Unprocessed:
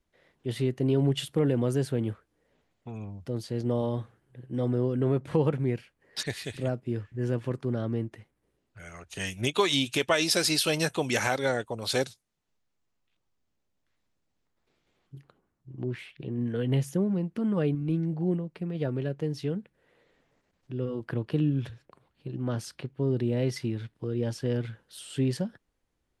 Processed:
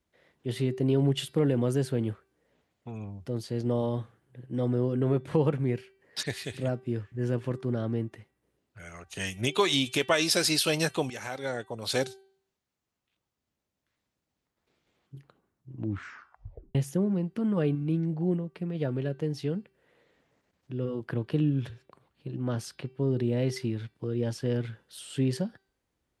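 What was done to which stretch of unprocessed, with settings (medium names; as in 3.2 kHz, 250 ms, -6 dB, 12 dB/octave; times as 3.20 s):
11.10–12.05 s: fade in, from -15.5 dB
15.74 s: tape stop 1.01 s
whole clip: high-pass 51 Hz; de-hum 387 Hz, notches 13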